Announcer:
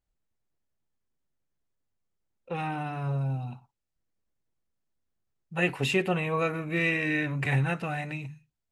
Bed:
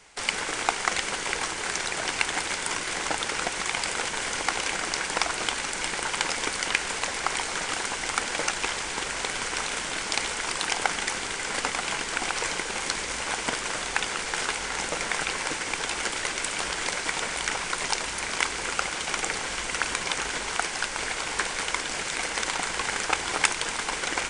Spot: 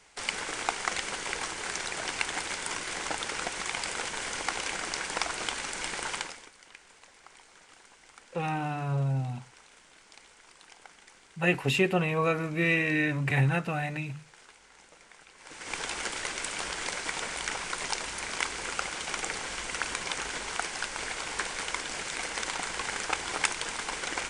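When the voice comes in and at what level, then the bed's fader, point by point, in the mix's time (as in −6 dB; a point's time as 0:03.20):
5.85 s, +1.0 dB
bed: 0:06.15 −5 dB
0:06.52 −26 dB
0:15.34 −26 dB
0:15.74 −5 dB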